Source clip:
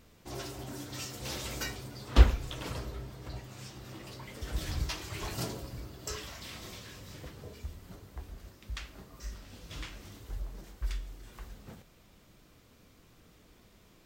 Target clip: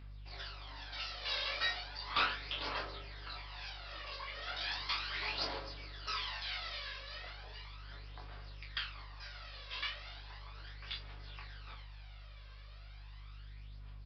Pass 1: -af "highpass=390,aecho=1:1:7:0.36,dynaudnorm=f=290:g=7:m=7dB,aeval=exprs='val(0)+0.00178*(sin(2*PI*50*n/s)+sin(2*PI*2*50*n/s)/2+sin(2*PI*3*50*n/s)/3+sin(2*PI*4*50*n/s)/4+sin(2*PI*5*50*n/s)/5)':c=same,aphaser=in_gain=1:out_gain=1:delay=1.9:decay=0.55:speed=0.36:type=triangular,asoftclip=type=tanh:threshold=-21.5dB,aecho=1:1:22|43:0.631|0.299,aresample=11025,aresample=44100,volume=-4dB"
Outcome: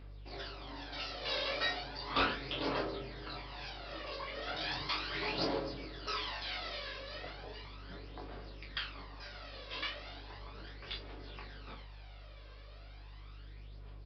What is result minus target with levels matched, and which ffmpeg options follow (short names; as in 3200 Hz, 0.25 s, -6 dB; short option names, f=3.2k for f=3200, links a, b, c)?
500 Hz band +8.5 dB
-af "highpass=980,aecho=1:1:7:0.36,dynaudnorm=f=290:g=7:m=7dB,aeval=exprs='val(0)+0.00178*(sin(2*PI*50*n/s)+sin(2*PI*2*50*n/s)/2+sin(2*PI*3*50*n/s)/3+sin(2*PI*4*50*n/s)/4+sin(2*PI*5*50*n/s)/5)':c=same,aphaser=in_gain=1:out_gain=1:delay=1.9:decay=0.55:speed=0.36:type=triangular,asoftclip=type=tanh:threshold=-21.5dB,aecho=1:1:22|43:0.631|0.299,aresample=11025,aresample=44100,volume=-4dB"